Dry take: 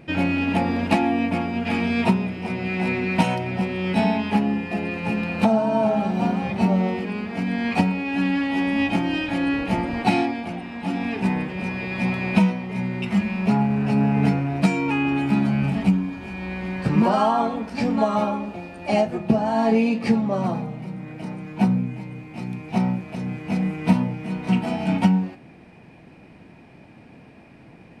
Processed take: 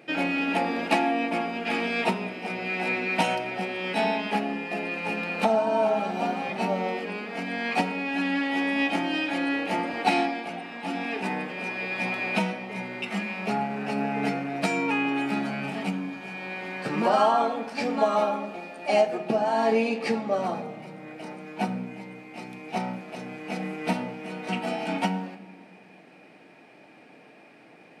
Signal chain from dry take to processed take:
high-pass filter 380 Hz 12 dB per octave
notch filter 990 Hz, Q 8.6
rectangular room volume 1,800 cubic metres, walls mixed, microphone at 0.44 metres

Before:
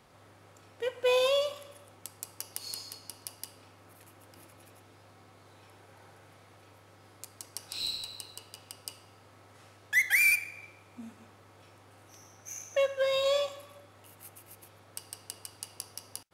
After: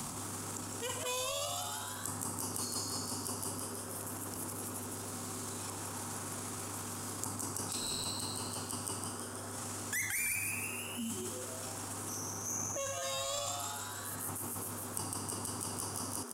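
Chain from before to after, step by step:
octave-band graphic EQ 125/250/500/1,000/2,000/4,000/8,000 Hz +4/+10/−10/+7/−9/−8/+11 dB
transient designer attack −9 dB, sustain +10 dB
echo with shifted repeats 159 ms, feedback 45%, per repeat +140 Hz, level −4.5 dB
multiband upward and downward compressor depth 100%

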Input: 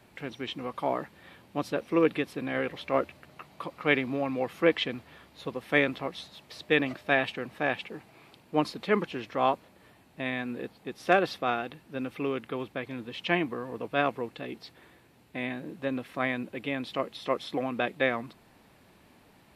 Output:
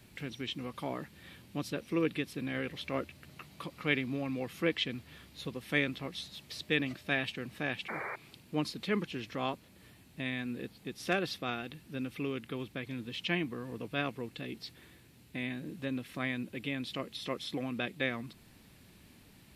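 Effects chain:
parametric band 790 Hz −13.5 dB 2.6 octaves
sound drawn into the spectrogram noise, 0:07.88–0:08.16, 330–2,400 Hz −42 dBFS
in parallel at −1.5 dB: downward compressor, threshold −45 dBFS, peak gain reduction 19 dB

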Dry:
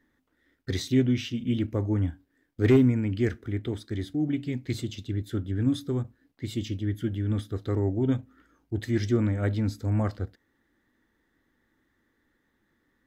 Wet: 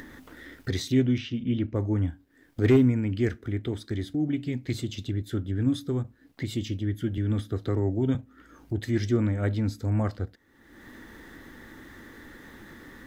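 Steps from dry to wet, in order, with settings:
upward compression, threshold −26 dBFS
0:01.18–0:01.76: high-frequency loss of the air 140 metres
0:07.17–0:08.15: multiband upward and downward compressor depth 40%

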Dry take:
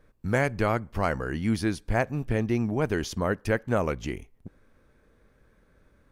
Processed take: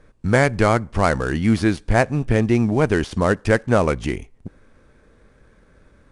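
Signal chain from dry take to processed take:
gap after every zero crossing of 0.059 ms
downsampling to 22,050 Hz
level +8.5 dB

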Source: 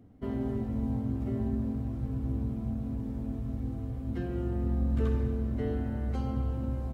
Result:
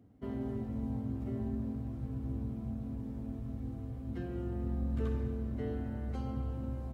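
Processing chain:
high-pass filter 50 Hz
level −5 dB

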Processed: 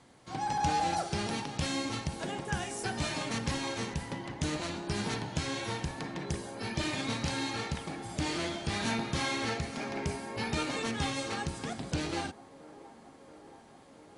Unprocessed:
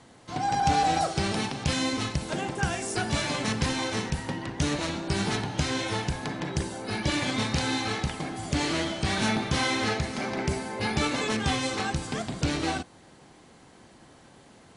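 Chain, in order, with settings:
delay with a band-pass on its return 705 ms, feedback 77%, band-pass 540 Hz, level −17.5 dB
wrong playback speed 24 fps film run at 25 fps
level −6 dB

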